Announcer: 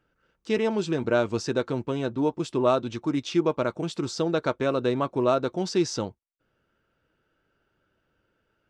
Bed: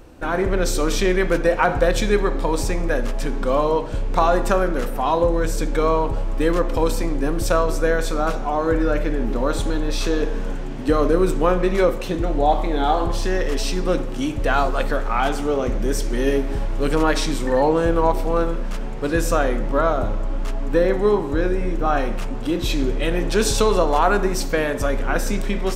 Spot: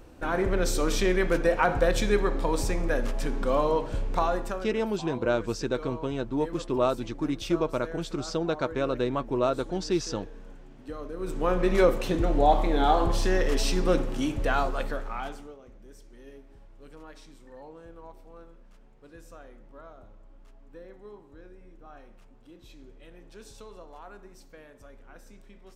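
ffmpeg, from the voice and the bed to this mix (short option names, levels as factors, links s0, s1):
-filter_complex "[0:a]adelay=4150,volume=0.708[s0];[1:a]volume=3.98,afade=t=out:st=3.98:d=0.7:silence=0.177828,afade=t=in:st=11.16:d=0.63:silence=0.133352,afade=t=out:st=13.96:d=1.61:silence=0.0501187[s1];[s0][s1]amix=inputs=2:normalize=0"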